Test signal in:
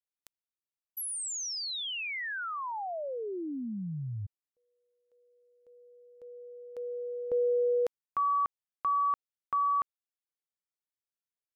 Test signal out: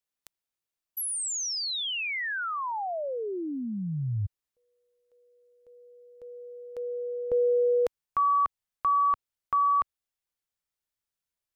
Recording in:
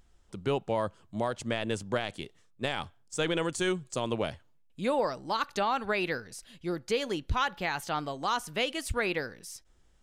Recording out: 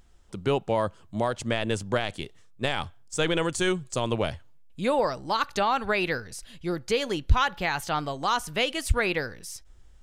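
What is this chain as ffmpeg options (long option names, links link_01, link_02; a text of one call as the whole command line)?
ffmpeg -i in.wav -af "asubboost=boost=2:cutoff=130,volume=4.5dB" out.wav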